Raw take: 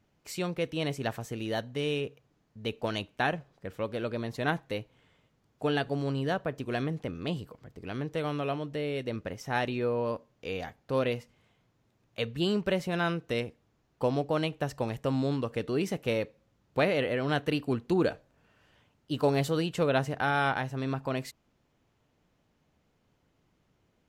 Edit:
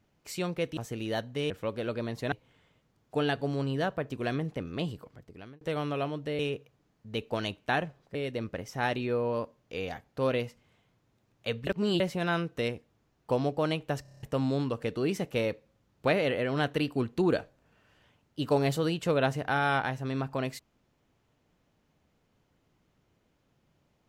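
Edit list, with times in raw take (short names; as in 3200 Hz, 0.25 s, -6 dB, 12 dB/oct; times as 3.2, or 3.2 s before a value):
0.77–1.17 cut
1.9–3.66 move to 8.87
4.48–4.8 cut
7.56–8.09 fade out
12.39–12.72 reverse
14.74 stutter in place 0.03 s, 7 plays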